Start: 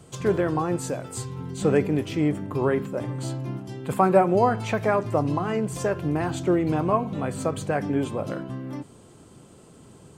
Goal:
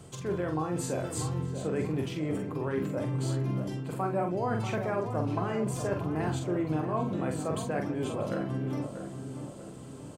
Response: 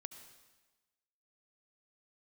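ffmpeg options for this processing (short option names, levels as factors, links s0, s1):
-filter_complex "[0:a]areverse,acompressor=threshold=0.0316:ratio=5,areverse,asplit=2[s0][s1];[s1]adelay=45,volume=0.562[s2];[s0][s2]amix=inputs=2:normalize=0,asplit=2[s3][s4];[s4]adelay=637,lowpass=f=1500:p=1,volume=0.398,asplit=2[s5][s6];[s6]adelay=637,lowpass=f=1500:p=1,volume=0.49,asplit=2[s7][s8];[s8]adelay=637,lowpass=f=1500:p=1,volume=0.49,asplit=2[s9][s10];[s10]adelay=637,lowpass=f=1500:p=1,volume=0.49,asplit=2[s11][s12];[s12]adelay=637,lowpass=f=1500:p=1,volume=0.49,asplit=2[s13][s14];[s14]adelay=637,lowpass=f=1500:p=1,volume=0.49[s15];[s3][s5][s7][s9][s11][s13][s15]amix=inputs=7:normalize=0"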